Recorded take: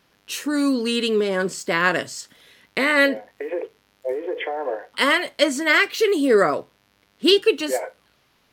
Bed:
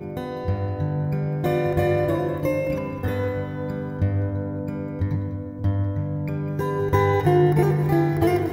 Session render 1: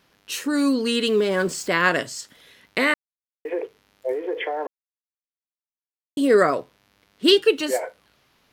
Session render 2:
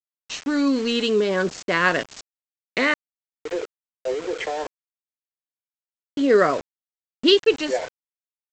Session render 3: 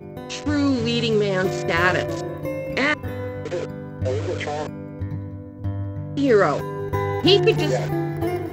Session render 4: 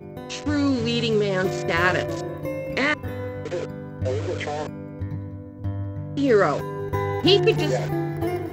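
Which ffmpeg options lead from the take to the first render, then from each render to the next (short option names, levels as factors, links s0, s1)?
-filter_complex "[0:a]asettb=1/sr,asplit=3[s0][s1][s2];[s0]atrim=end=1.074[s3];[s1]atrim=start=1.07:end=1.68,asetpts=PTS-STARTPTS,afade=t=in:d=0.004:c=qsin,afade=t=out:st=0.606:d=0.004:c=qsin,aeval=exprs='val(0)+0.5*0.0119*sgn(val(0))':c=same[s4];[s2]atrim=start=1.676[s5];[s3][s4]acrossfade=d=0.004:c1=hsin:c2=qsin[s6];[s6][s5]acrossfade=d=0.004:c1=qsin:c2=hsin,asplit=5[s7][s8][s9][s10][s11];[s7]atrim=end=2.94,asetpts=PTS-STARTPTS,afade=t=out:st=2.936:d=0.004:c=hsin[s12];[s8]atrim=start=2.94:end=3.45,asetpts=PTS-STARTPTS,volume=0[s13];[s9]atrim=start=3.45:end=4.67,asetpts=PTS-STARTPTS,afade=t=in:d=0.004:c=hsin,afade=t=out:st=1.216:d=0.004:c=hsin[s14];[s10]atrim=start=4.67:end=6.17,asetpts=PTS-STARTPTS,volume=0[s15];[s11]atrim=start=6.17,asetpts=PTS-STARTPTS,afade=t=in:d=0.004:c=hsin[s16];[s12][s13][s14][s15][s16]concat=n=5:v=0:a=1"
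-af "adynamicsmooth=sensitivity=7:basefreq=5100,aresample=16000,aeval=exprs='val(0)*gte(abs(val(0)),0.0266)':c=same,aresample=44100"
-filter_complex "[1:a]volume=0.596[s0];[0:a][s0]amix=inputs=2:normalize=0"
-af "volume=0.841"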